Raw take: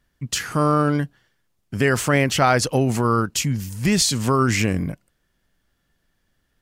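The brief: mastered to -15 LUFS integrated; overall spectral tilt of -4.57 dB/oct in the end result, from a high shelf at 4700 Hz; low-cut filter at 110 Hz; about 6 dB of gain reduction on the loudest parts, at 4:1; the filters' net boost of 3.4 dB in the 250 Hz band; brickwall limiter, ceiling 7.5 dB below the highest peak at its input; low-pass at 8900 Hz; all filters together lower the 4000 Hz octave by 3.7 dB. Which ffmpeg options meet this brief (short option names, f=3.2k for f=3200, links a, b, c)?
-af "highpass=110,lowpass=8.9k,equalizer=f=250:t=o:g=4.5,equalizer=f=4k:t=o:g=-8,highshelf=f=4.7k:g=5.5,acompressor=threshold=-19dB:ratio=4,volume=11.5dB,alimiter=limit=-4.5dB:level=0:latency=1"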